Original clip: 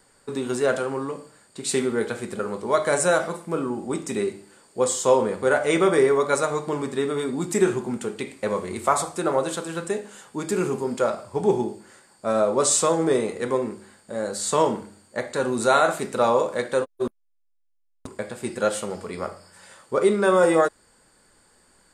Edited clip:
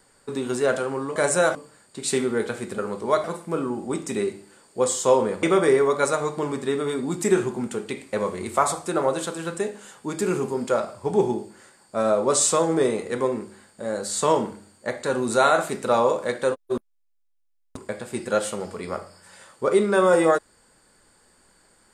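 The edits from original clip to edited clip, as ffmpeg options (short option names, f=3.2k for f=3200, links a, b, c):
-filter_complex "[0:a]asplit=5[a][b][c][d][e];[a]atrim=end=1.162[f];[b]atrim=start=2.848:end=3.242[g];[c]atrim=start=1.158:end=2.852[h];[d]atrim=start=3.238:end=5.432[i];[e]atrim=start=5.728[j];[f][g]acrossfade=d=0.004:c1=hsin:c2=hsin[k];[k][h]acrossfade=d=0.004:c1=hsin:c2=hsin[l];[l][i]acrossfade=d=0.004:c1=hsin:c2=hsin[m];[m][j]acrossfade=d=0.004:c1=hsin:c2=hsin"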